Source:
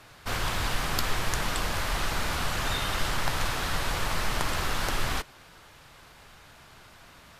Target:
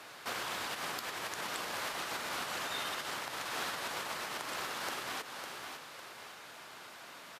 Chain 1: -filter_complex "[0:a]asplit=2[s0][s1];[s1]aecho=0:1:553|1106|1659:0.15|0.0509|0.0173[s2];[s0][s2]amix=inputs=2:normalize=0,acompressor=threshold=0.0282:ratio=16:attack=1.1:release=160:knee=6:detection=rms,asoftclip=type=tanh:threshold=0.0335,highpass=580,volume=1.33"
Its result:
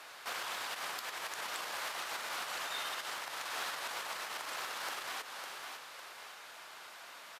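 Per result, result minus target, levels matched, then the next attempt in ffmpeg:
saturation: distortion +19 dB; 250 Hz band -8.5 dB
-filter_complex "[0:a]asplit=2[s0][s1];[s1]aecho=0:1:553|1106|1659:0.15|0.0509|0.0173[s2];[s0][s2]amix=inputs=2:normalize=0,acompressor=threshold=0.0282:ratio=16:attack=1.1:release=160:knee=6:detection=rms,asoftclip=type=tanh:threshold=0.112,highpass=580,volume=1.33"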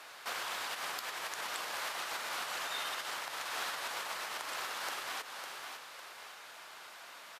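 250 Hz band -9.0 dB
-filter_complex "[0:a]asplit=2[s0][s1];[s1]aecho=0:1:553|1106|1659:0.15|0.0509|0.0173[s2];[s0][s2]amix=inputs=2:normalize=0,acompressor=threshold=0.0282:ratio=16:attack=1.1:release=160:knee=6:detection=rms,asoftclip=type=tanh:threshold=0.112,highpass=290,volume=1.33"

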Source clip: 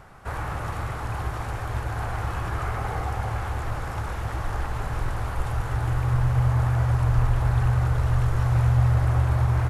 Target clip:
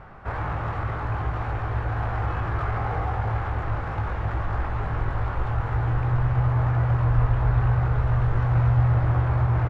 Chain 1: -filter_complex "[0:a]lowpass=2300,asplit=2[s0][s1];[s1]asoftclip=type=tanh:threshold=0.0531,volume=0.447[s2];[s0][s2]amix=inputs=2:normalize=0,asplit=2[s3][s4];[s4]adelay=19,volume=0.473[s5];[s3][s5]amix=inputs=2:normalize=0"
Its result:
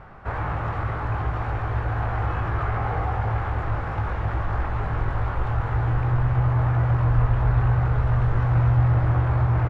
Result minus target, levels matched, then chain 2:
saturation: distortion -5 dB
-filter_complex "[0:a]lowpass=2300,asplit=2[s0][s1];[s1]asoftclip=type=tanh:threshold=0.0158,volume=0.447[s2];[s0][s2]amix=inputs=2:normalize=0,asplit=2[s3][s4];[s4]adelay=19,volume=0.473[s5];[s3][s5]amix=inputs=2:normalize=0"

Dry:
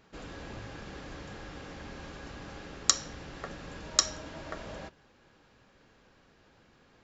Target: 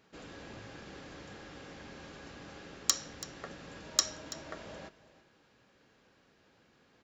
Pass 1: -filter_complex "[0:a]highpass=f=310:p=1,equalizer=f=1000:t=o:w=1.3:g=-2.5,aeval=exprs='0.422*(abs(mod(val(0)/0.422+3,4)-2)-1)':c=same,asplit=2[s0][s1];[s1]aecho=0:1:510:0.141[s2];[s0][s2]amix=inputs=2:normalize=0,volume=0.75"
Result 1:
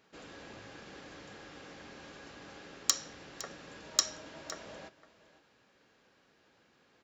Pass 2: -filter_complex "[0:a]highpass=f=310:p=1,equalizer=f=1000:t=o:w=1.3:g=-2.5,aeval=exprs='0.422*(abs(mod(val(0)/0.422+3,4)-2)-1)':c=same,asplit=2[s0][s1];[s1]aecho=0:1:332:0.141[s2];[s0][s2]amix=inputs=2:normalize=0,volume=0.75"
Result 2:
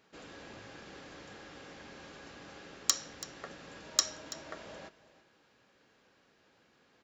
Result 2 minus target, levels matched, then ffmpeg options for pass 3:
125 Hz band -5.5 dB
-filter_complex "[0:a]highpass=f=140:p=1,equalizer=f=1000:t=o:w=1.3:g=-2.5,aeval=exprs='0.422*(abs(mod(val(0)/0.422+3,4)-2)-1)':c=same,asplit=2[s0][s1];[s1]aecho=0:1:332:0.141[s2];[s0][s2]amix=inputs=2:normalize=0,volume=0.75"

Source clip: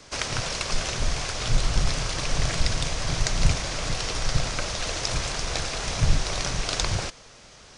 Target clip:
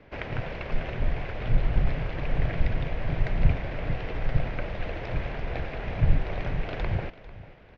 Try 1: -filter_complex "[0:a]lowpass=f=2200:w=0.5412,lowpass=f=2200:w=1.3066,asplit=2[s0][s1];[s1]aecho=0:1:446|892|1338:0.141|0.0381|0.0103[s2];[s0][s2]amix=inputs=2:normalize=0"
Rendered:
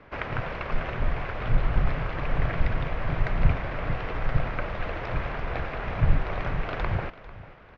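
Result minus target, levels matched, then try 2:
1 kHz band +4.5 dB
-filter_complex "[0:a]lowpass=f=2200:w=0.5412,lowpass=f=2200:w=1.3066,equalizer=f=1200:t=o:w=0.85:g=-10,asplit=2[s0][s1];[s1]aecho=0:1:446|892|1338:0.141|0.0381|0.0103[s2];[s0][s2]amix=inputs=2:normalize=0"

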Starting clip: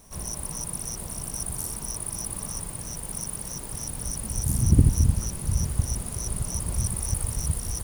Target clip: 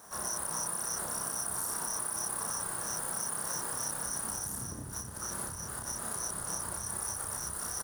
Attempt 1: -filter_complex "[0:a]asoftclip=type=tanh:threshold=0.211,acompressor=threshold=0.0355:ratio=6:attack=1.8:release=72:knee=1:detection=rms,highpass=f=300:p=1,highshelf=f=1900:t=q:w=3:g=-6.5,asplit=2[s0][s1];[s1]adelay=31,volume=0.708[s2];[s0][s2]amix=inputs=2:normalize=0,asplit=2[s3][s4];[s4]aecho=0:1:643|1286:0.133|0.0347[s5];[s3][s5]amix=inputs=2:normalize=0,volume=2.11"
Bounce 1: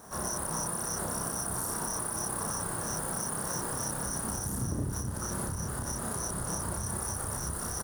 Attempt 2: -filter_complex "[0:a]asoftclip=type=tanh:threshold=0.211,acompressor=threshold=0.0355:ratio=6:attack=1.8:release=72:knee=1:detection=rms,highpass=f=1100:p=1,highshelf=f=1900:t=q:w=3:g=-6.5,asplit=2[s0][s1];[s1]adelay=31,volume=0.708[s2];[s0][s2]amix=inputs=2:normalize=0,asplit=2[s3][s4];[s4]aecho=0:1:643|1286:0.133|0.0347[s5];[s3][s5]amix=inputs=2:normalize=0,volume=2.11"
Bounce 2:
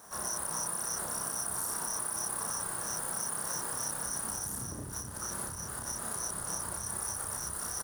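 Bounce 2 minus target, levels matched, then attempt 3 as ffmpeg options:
saturation: distortion +12 dB
-filter_complex "[0:a]asoftclip=type=tanh:threshold=0.596,acompressor=threshold=0.0355:ratio=6:attack=1.8:release=72:knee=1:detection=rms,highpass=f=1100:p=1,highshelf=f=1900:t=q:w=3:g=-6.5,asplit=2[s0][s1];[s1]adelay=31,volume=0.708[s2];[s0][s2]amix=inputs=2:normalize=0,asplit=2[s3][s4];[s4]aecho=0:1:643|1286:0.133|0.0347[s5];[s3][s5]amix=inputs=2:normalize=0,volume=2.11"

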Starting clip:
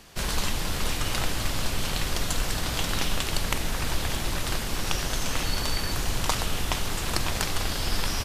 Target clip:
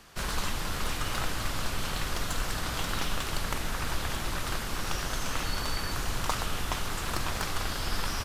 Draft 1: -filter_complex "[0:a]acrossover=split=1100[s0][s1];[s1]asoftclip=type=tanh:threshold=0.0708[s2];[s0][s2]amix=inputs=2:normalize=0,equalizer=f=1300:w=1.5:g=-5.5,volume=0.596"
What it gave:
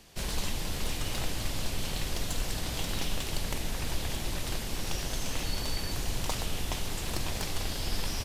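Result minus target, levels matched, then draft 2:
1 kHz band -5.5 dB
-filter_complex "[0:a]acrossover=split=1100[s0][s1];[s1]asoftclip=type=tanh:threshold=0.0708[s2];[s0][s2]amix=inputs=2:normalize=0,equalizer=f=1300:w=1.5:g=6,volume=0.596"

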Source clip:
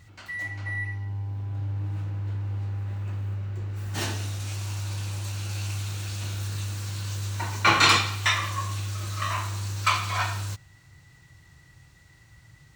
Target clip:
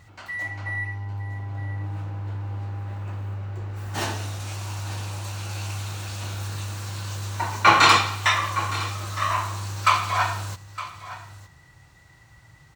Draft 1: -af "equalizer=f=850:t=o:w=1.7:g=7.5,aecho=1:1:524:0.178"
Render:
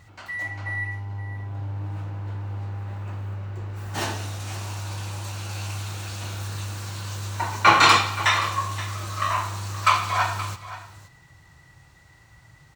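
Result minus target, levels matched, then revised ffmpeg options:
echo 389 ms early
-af "equalizer=f=850:t=o:w=1.7:g=7.5,aecho=1:1:913:0.178"

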